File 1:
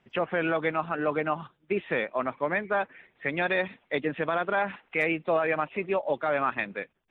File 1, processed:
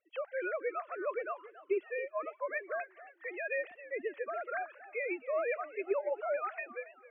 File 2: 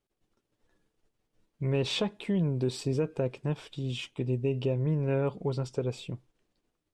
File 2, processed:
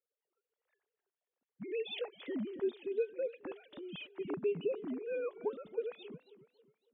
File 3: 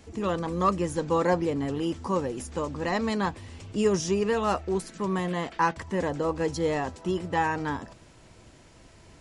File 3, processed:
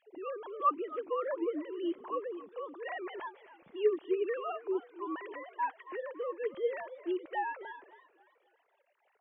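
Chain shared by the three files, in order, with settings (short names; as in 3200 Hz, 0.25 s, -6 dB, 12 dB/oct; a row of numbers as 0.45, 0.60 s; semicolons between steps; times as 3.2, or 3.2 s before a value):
sine-wave speech; warbling echo 0.273 s, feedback 39%, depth 178 cents, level -16.5 dB; gain -8.5 dB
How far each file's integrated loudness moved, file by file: -8.5, -8.0, -8.0 LU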